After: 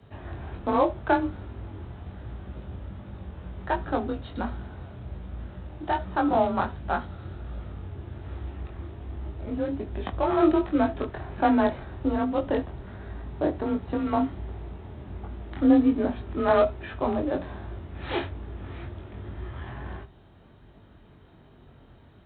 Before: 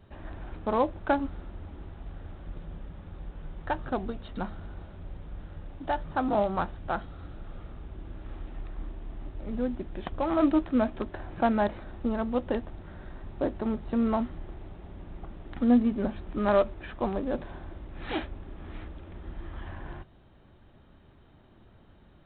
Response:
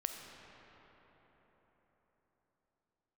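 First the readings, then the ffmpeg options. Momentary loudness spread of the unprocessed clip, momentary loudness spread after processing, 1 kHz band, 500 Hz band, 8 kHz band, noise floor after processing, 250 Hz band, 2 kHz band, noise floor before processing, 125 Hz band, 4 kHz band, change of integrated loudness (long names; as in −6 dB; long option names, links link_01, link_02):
19 LU, 18 LU, +4.0 dB, +3.0 dB, can't be measured, −53 dBFS, +3.0 dB, +4.0 dB, −56 dBFS, +5.0 dB, +3.5 dB, +2.5 dB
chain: -filter_complex "[0:a]asplit=2[link_01][link_02];[1:a]atrim=start_sample=2205,atrim=end_sample=3528[link_03];[link_02][link_03]afir=irnorm=-1:irlink=0,volume=1.5dB[link_04];[link_01][link_04]amix=inputs=2:normalize=0,afreqshift=30,flanger=delay=20:depth=3.2:speed=1.3"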